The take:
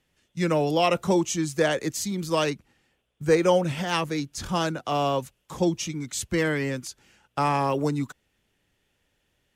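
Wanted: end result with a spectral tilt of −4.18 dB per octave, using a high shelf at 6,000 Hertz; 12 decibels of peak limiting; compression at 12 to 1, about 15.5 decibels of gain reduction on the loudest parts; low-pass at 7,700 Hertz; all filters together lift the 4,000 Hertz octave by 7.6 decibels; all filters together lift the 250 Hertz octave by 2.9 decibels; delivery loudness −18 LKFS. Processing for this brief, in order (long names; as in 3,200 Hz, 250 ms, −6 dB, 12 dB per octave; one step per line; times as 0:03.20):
low-pass filter 7,700 Hz
parametric band 250 Hz +4.5 dB
parametric band 4,000 Hz +9 dB
high-shelf EQ 6,000 Hz +5.5 dB
downward compressor 12 to 1, threshold −30 dBFS
level +18 dB
brickwall limiter −8.5 dBFS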